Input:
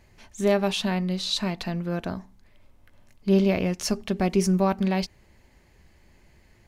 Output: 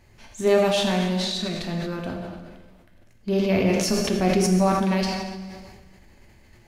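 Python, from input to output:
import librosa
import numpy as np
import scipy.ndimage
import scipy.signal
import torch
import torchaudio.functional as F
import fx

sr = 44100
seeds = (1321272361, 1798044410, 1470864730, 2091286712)

y = fx.rotary(x, sr, hz=1.2, at=(1.2, 3.56))
y = fx.rev_plate(y, sr, seeds[0], rt60_s=1.5, hf_ratio=0.9, predelay_ms=0, drr_db=0.5)
y = fx.sustainer(y, sr, db_per_s=35.0)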